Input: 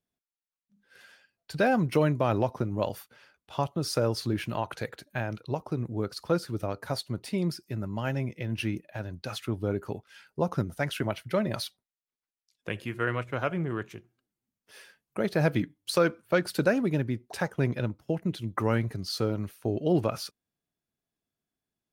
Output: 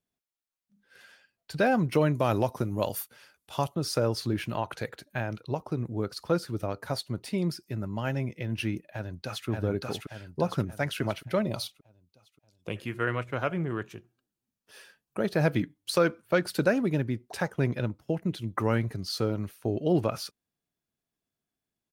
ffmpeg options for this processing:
ffmpeg -i in.wav -filter_complex "[0:a]asettb=1/sr,asplit=3[link_01][link_02][link_03];[link_01]atrim=end=2.144[link_04];[link_02]atrim=start=2.14:end=3.75,asetpts=PTS-STARTPTS,afade=type=in:duration=0.004:curve=qsin,afade=type=out:start_time=1.606:duration=0.004:curve=qsin,equalizer=frequency=12000:width_type=o:width=1.6:gain=13.5[link_05];[link_03]atrim=start=3.746[link_06];[link_04][link_05]acrossfade=duration=0.004:curve1=hsin:curve2=qsin[link_07];[link_07][link_06]acrossfade=duration=0.004:curve1=qsin:curve2=hsin,asplit=2[link_08][link_09];[link_09]afade=type=in:start_time=8.9:duration=0.01,afade=type=out:start_time=9.48:duration=0.01,aecho=0:1:580|1160|1740|2320|2900|3480|4060:0.841395|0.420698|0.210349|0.105174|0.0525872|0.0262936|0.0131468[link_10];[link_08][link_10]amix=inputs=2:normalize=0,asettb=1/sr,asplit=3[link_11][link_12][link_13];[link_11]atrim=end=11.424[link_14];[link_12]atrim=start=11.42:end=12.76,asetpts=PTS-STARTPTS,afade=type=in:duration=0.004:curve=qsin,afade=type=out:start_time=1.336:duration=0.004:curve=qsin,equalizer=frequency=1700:width=3.3:gain=-14.5[link_15];[link_13]atrim=start=12.756[link_16];[link_14][link_15]acrossfade=duration=0.004:curve1=hsin:curve2=qsin[link_17];[link_17][link_16]acrossfade=duration=0.004:curve1=qsin:curve2=hsin,asettb=1/sr,asplit=3[link_18][link_19][link_20];[link_18]atrim=end=13.834[link_21];[link_19]atrim=start=13.83:end=15.34,asetpts=PTS-STARTPTS,afade=type=in:duration=0.004:curve=qsin,afade=type=out:start_time=1.506:duration=0.004:curve=qsin,bandreject=frequency=2100:width=9.6[link_22];[link_20]atrim=start=15.336[link_23];[link_21][link_22]acrossfade=duration=0.004:curve1=hsin:curve2=qsin[link_24];[link_24][link_23]acrossfade=duration=0.004:curve1=qsin:curve2=hsin" out.wav

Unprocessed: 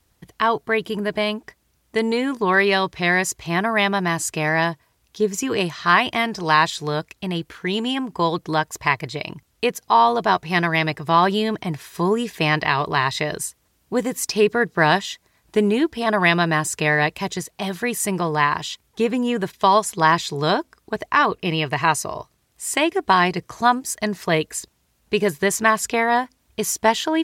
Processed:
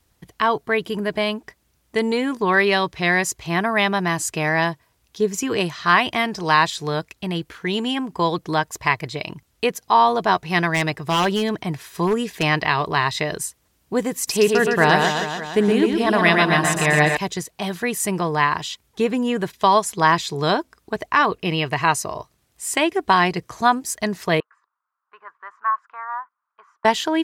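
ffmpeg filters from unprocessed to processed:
ffmpeg -i in.wav -filter_complex "[0:a]asettb=1/sr,asplit=3[link_01][link_02][link_03];[link_01]atrim=end=10.744[link_04];[link_02]atrim=start=10.74:end=12.43,asetpts=PTS-STARTPTS,afade=type=in:duration=0.004:curve=qsin,afade=type=out:start_time=1.686:duration=0.004:curve=qsin,aeval=exprs='0.251*(abs(mod(val(0)/0.251+3,4)-2)-1)':channel_layout=same[link_05];[link_03]atrim=start=12.426[link_06];[link_04][link_05]acrossfade=duration=0.004:curve1=hsin:curve2=qsin[link_07];[link_07][link_06]acrossfade=duration=0.004:curve1=qsin:curve2=hsin,asettb=1/sr,asplit=3[link_08][link_09][link_10];[link_08]atrim=end=14.154[link_11];[link_09]atrim=start=14.15:end=17.17,asetpts=PTS-STARTPTS,afade=type=in:duration=0.004:curve=qsin,afade=type=out:start_time=3.016:duration=0.004:curve=qsin,aecho=1:1:120|258|416.7|599.2|809.1:0.631|0.398|0.251|0.158|0.1,atrim=end_sample=133182[link_12];[link_10]atrim=start=17.166[link_13];[link_11][link_12]acrossfade=duration=0.004:curve1=hsin:curve2=qsin[link_14];[link_14][link_13]acrossfade=duration=0.004:curve1=qsin:curve2=hsin,asettb=1/sr,asplit=3[link_15][link_16][link_17];[link_15]atrim=end=24.404[link_18];[link_16]atrim=start=24.4:end=26.85,asetpts=PTS-STARTPTS,afade=type=in:duration=0.004:curve=qsin,afade=type=out:start_time=2.446:duration=0.004:curve=qsin,asuperpass=centerf=1200:order=4:qfactor=3.1[link_19];[link_17]atrim=start=26.846[link_20];[link_18][link_19]acrossfade=duration=0.004:curve1=hsin:curve2=qsin[link_21];[link_21][link_20]acrossfade=duration=0.004:curve1=qsin:curve2=hsin" out.wav

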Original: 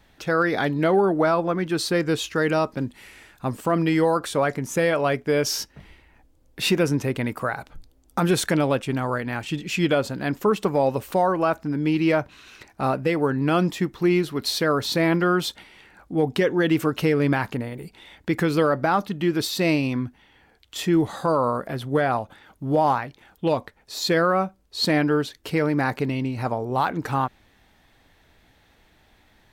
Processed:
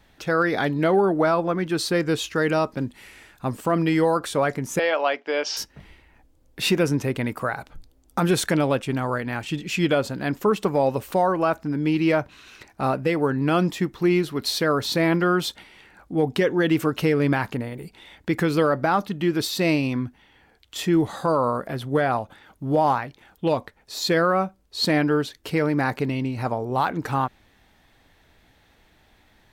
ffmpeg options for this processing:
ffmpeg -i in.wav -filter_complex "[0:a]asettb=1/sr,asplit=3[link_01][link_02][link_03];[link_01]atrim=end=4.794[link_04];[link_02]atrim=start=4.79:end=5.57,asetpts=PTS-STARTPTS,afade=type=in:duration=0.004:curve=qsin,afade=type=out:start_time=0.776:duration=0.004:curve=qsin,highpass=frequency=350:width=0.5412,highpass=frequency=350:width=1.3066,equalizer=frequency=400:width_type=q:width=4:gain=-8,equalizer=frequency=820:width_type=q:width=4:gain=5,equalizer=frequency=2900:width_type=q:width=4:gain=6,lowpass=frequency=5400:width=0.5412,lowpass=frequency=5400:width=1.3066[link_05];[link_03]atrim=start=5.566[link_06];[link_04][link_05]acrossfade=duration=0.004:curve1=hsin:curve2=qsin[link_07];[link_07][link_06]acrossfade=duration=0.004:curve1=qsin:curve2=hsin" out.wav

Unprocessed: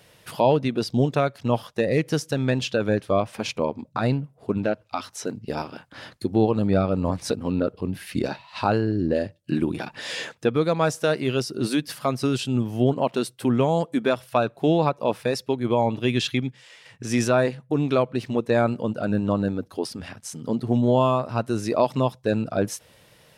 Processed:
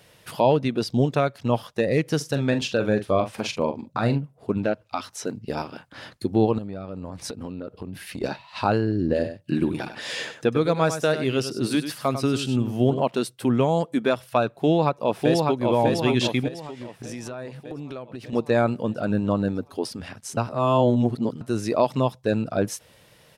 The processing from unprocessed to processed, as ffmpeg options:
ffmpeg -i in.wav -filter_complex "[0:a]asplit=3[link_01][link_02][link_03];[link_01]afade=type=out:start_time=2.2:duration=0.02[link_04];[link_02]asplit=2[link_05][link_06];[link_06]adelay=43,volume=-9.5dB[link_07];[link_05][link_07]amix=inputs=2:normalize=0,afade=type=in:start_time=2.2:duration=0.02,afade=type=out:start_time=4.17:duration=0.02[link_08];[link_03]afade=type=in:start_time=4.17:duration=0.02[link_09];[link_04][link_08][link_09]amix=inputs=3:normalize=0,asettb=1/sr,asplit=3[link_10][link_11][link_12];[link_10]atrim=end=6.584[link_13];[link_11]atrim=start=6.58:end=8.22,asetpts=PTS-STARTPTS,afade=type=in:duration=0.004:curve=qsin,afade=type=out:start_time=1.636:duration=0.004:curve=qsin,acompressor=threshold=-29dB:ratio=12:attack=3.2:release=140:knee=1:detection=peak[link_14];[link_12]atrim=start=8.216[link_15];[link_13][link_14]acrossfade=duration=0.004:curve1=hsin:curve2=qsin[link_16];[link_16][link_15]acrossfade=duration=0.004:curve1=qsin:curve2=hsin,asettb=1/sr,asplit=3[link_17][link_18][link_19];[link_17]atrim=end=8.994[link_20];[link_18]atrim=start=8.99:end=13.03,asetpts=PTS-STARTPTS,afade=type=in:duration=0.004:curve=qsin,afade=type=out:start_time=4.036:duration=0.004:curve=qsin,aecho=1:1:98:0.316,atrim=end_sample=178164[link_21];[link_19]atrim=start=13.026[link_22];[link_20][link_21]acrossfade=duration=0.004:curve1=hsin:curve2=qsin[link_23];[link_23][link_22]acrossfade=duration=0.004:curve1=qsin:curve2=hsin,asplit=2[link_24][link_25];[link_25]afade=type=in:start_time=14.49:duration=0.01,afade=type=out:start_time=15.68:duration=0.01,aecho=0:1:600|1200|1800|2400|3000|3600|4200|4800:0.794328|0.436881|0.240284|0.132156|0.072686|0.0399773|0.0219875|0.0120931[link_26];[link_24][link_26]amix=inputs=2:normalize=0,asettb=1/sr,asplit=3[link_27][link_28][link_29];[link_27]atrim=end=16.484[link_30];[link_28]atrim=start=16.48:end=18.33,asetpts=PTS-STARTPTS,afade=type=in:duration=0.004:curve=qsin,afade=type=out:start_time=1.846:duration=0.004:curve=qsin,acompressor=threshold=-31dB:ratio=10:attack=3.2:release=140:knee=1:detection=peak[link_31];[link_29]atrim=start=18.326[link_32];[link_30][link_31]acrossfade=duration=0.004:curve1=hsin:curve2=qsin[link_33];[link_33][link_32]acrossfade=duration=0.004:curve1=qsin:curve2=hsin,asplit=3[link_34][link_35][link_36];[link_34]atrim=end=20.372[link_37];[link_35]atrim=start=20.368:end=21.412,asetpts=PTS-STARTPTS,areverse[link_38];[link_36]atrim=start=21.408[link_39];[link_37][link_38]acrossfade=duration=0.004:curve1=hsin:curve2=hsin[link_40];[link_40][link_39]acrossfade=duration=0.004:curve1=hsin:curve2=hsin" out.wav

